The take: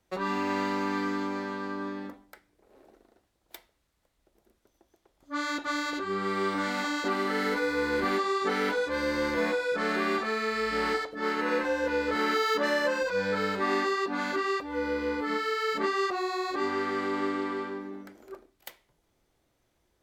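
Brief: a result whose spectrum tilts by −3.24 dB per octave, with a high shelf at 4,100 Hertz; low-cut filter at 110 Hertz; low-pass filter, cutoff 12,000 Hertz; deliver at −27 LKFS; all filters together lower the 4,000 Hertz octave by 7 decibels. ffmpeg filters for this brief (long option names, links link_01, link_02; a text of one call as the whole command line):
ffmpeg -i in.wav -af "highpass=110,lowpass=12000,equalizer=frequency=4000:width_type=o:gain=-5,highshelf=frequency=4100:gain=-6.5,volume=3dB" out.wav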